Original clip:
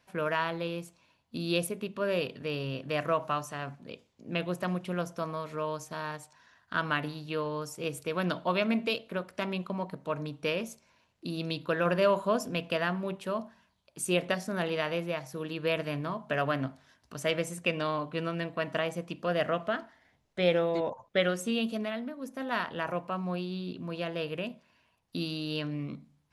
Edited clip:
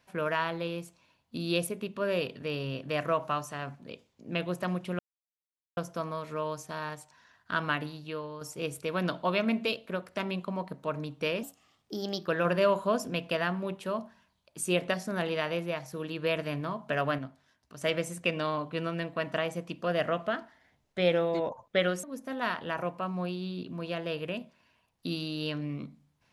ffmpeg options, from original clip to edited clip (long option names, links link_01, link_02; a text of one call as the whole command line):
ffmpeg -i in.wav -filter_complex "[0:a]asplit=8[link_01][link_02][link_03][link_04][link_05][link_06][link_07][link_08];[link_01]atrim=end=4.99,asetpts=PTS-STARTPTS,afade=type=out:start_time=4.986:duration=0.004:curve=hsin,apad=pad_dur=0.78[link_09];[link_02]atrim=start=4.99:end=7.63,asetpts=PTS-STARTPTS,afade=type=in:duration=0.004:curve=hsin,afade=type=out:start_time=1.94:duration=0.7:silence=0.375837[link_10];[link_03]atrim=start=7.63:end=10.654,asetpts=PTS-STARTPTS,afade=type=in:duration=0.004:curve=hsin:silence=0.375837[link_11];[link_04]atrim=start=10.65:end=11.68,asetpts=PTS-STARTPTS,asetrate=53802,aresample=44100[link_12];[link_05]atrim=start=11.676:end=16.592[link_13];[link_06]atrim=start=16.588:end=17.222,asetpts=PTS-STARTPTS,volume=-6.5dB[link_14];[link_07]atrim=start=17.218:end=21.442[link_15];[link_08]atrim=start=22.128[link_16];[link_09][link_10][link_11]concat=n=3:v=0:a=1[link_17];[link_17][link_12]acrossfade=duration=0.004:curve1=hsin:curve2=hsin[link_18];[link_18][link_13]acrossfade=duration=0.004:curve1=hsin:curve2=hsin[link_19];[link_19][link_14]acrossfade=duration=0.004:curve1=hsin:curve2=hsin[link_20];[link_20][link_15]acrossfade=duration=0.004:curve1=hsin:curve2=hsin[link_21];[link_21][link_16]acrossfade=duration=0.004:curve1=hsin:curve2=hsin" out.wav